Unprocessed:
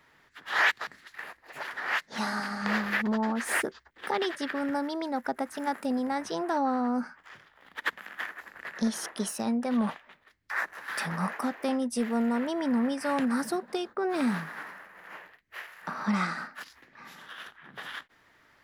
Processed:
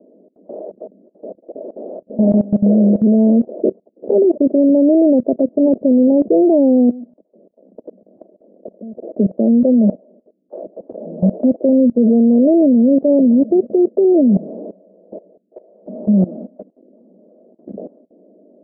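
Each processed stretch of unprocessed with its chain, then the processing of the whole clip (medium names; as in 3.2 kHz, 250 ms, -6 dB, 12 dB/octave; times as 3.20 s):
6.89–9.04 s: treble shelf 6.2 kHz -7 dB + level held to a coarse grid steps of 20 dB + transformer saturation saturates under 1.1 kHz
whole clip: Chebyshev band-pass 190–640 Hz, order 5; level held to a coarse grid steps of 19 dB; loudness maximiser +31.5 dB; trim -4 dB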